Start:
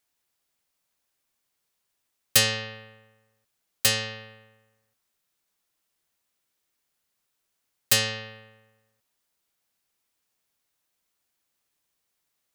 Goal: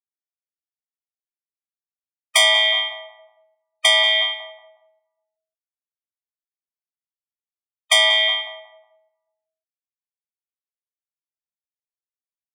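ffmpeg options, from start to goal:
-filter_complex "[0:a]aemphasis=mode=reproduction:type=75kf,afftfilt=real='re*gte(hypot(re,im),0.00316)':imag='im*gte(hypot(re,im),0.00316)':win_size=1024:overlap=0.75,highpass=f=160:t=q:w=0.5412,highpass=f=160:t=q:w=1.307,lowpass=f=3300:t=q:w=0.5176,lowpass=f=3300:t=q:w=0.7071,lowpass=f=3300:t=q:w=1.932,afreqshift=89,aexciter=amount=4.8:drive=1.3:freq=2600,aeval=exprs='0.501*sin(PI/2*4.47*val(0)/0.501)':c=same,asplit=2[s0][s1];[s1]adelay=182,lowpass=f=1000:p=1,volume=0.473,asplit=2[s2][s3];[s3]adelay=182,lowpass=f=1000:p=1,volume=0.42,asplit=2[s4][s5];[s5]adelay=182,lowpass=f=1000:p=1,volume=0.42,asplit=2[s6][s7];[s7]adelay=182,lowpass=f=1000:p=1,volume=0.42,asplit=2[s8][s9];[s9]adelay=182,lowpass=f=1000:p=1,volume=0.42[s10];[s2][s4][s6][s8][s10]amix=inputs=5:normalize=0[s11];[s0][s11]amix=inputs=2:normalize=0,adynamicequalizer=threshold=0.0562:dfrequency=1800:dqfactor=0.83:tfrequency=1800:tqfactor=0.83:attack=5:release=100:ratio=0.375:range=2.5:mode=boostabove:tftype=bell,alimiter=level_in=4.47:limit=0.891:release=50:level=0:latency=1,afftfilt=real='re*eq(mod(floor(b*sr/1024/620),2),1)':imag='im*eq(mod(floor(b*sr/1024/620),2),1)':win_size=1024:overlap=0.75,volume=0.668"

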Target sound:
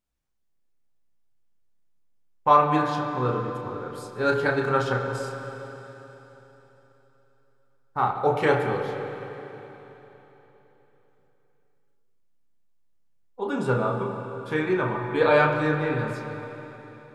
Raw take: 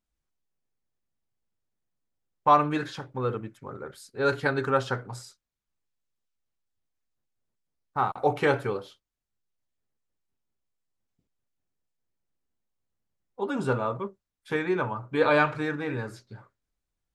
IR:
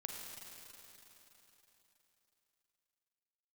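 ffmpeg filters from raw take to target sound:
-filter_complex "[0:a]asplit=2[s0][s1];[1:a]atrim=start_sample=2205,highshelf=f=3600:g=-9.5,adelay=32[s2];[s1][s2]afir=irnorm=-1:irlink=0,volume=1.33[s3];[s0][s3]amix=inputs=2:normalize=0"

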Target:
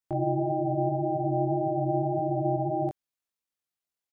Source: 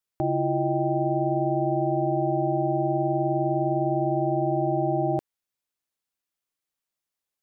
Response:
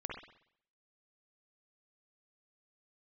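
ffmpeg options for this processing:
-af "atempo=1.8,flanger=delay=19:depth=3.8:speed=1.8"

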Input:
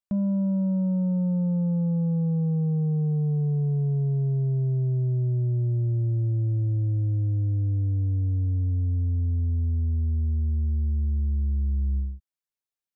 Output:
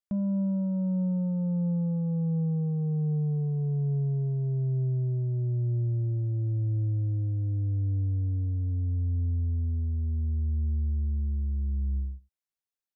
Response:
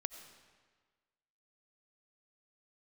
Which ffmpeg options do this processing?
-af "aecho=1:1:92:0.0891,volume=0.668"

